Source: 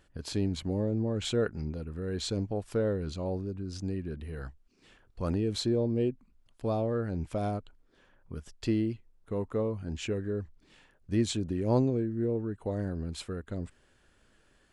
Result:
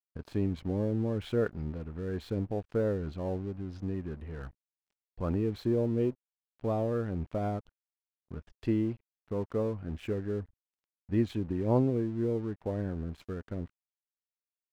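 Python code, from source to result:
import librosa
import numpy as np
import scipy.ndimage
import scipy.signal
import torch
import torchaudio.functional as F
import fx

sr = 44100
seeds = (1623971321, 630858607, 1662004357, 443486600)

y = scipy.signal.sosfilt(scipy.signal.butter(2, 2200.0, 'lowpass', fs=sr, output='sos'), x)
y = np.sign(y) * np.maximum(np.abs(y) - 10.0 ** (-52.0 / 20.0), 0.0)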